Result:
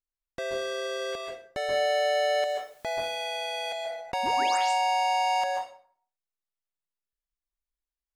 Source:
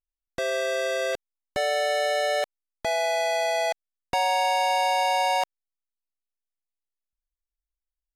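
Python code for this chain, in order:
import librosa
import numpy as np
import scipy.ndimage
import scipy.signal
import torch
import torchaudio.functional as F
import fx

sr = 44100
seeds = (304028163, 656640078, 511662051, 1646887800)

y = fx.high_shelf(x, sr, hz=7300.0, db=-6.5)
y = fx.quant_dither(y, sr, seeds[0], bits=10, dither='triangular', at=(1.71, 3.1), fade=0.02)
y = fx.spec_paint(y, sr, seeds[1], shape='rise', start_s=4.23, length_s=0.35, low_hz=210.0, high_hz=9600.0, level_db=-32.0)
y = fx.rev_plate(y, sr, seeds[2], rt60_s=0.52, hf_ratio=0.75, predelay_ms=120, drr_db=0.0)
y = fx.sustainer(y, sr, db_per_s=53.0, at=(3.65, 4.9))
y = F.gain(torch.from_numpy(y), -5.5).numpy()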